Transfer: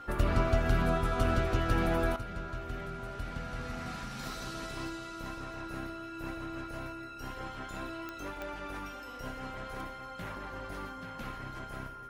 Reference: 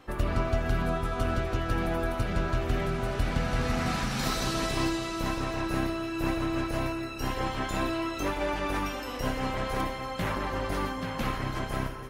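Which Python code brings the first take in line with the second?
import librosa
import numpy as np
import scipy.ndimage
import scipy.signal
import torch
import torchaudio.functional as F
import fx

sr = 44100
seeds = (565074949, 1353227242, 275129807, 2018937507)

y = fx.fix_declick_ar(x, sr, threshold=10.0)
y = fx.notch(y, sr, hz=1400.0, q=30.0)
y = fx.gain(y, sr, db=fx.steps((0.0, 0.0), (2.16, 11.5)))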